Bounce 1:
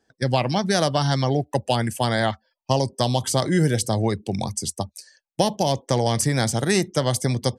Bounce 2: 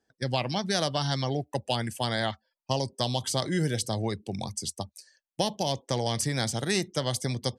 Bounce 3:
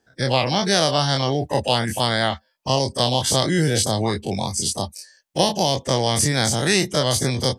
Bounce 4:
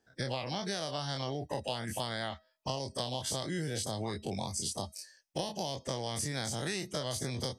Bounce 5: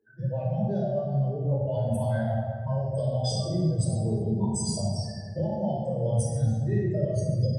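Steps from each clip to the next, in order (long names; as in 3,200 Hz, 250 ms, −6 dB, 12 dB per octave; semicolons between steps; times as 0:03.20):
dynamic equaliser 3,700 Hz, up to +6 dB, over −40 dBFS, Q 0.95; level −8 dB
every bin's largest magnitude spread in time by 60 ms; level +5.5 dB
downward compressor 6 to 1, threshold −25 dBFS, peak gain reduction 12.5 dB; tuned comb filter 640 Hz, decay 0.41 s, mix 50%; level −1.5 dB
expanding power law on the bin magnitudes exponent 3.7; rectangular room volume 2,000 cubic metres, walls mixed, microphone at 4.9 metres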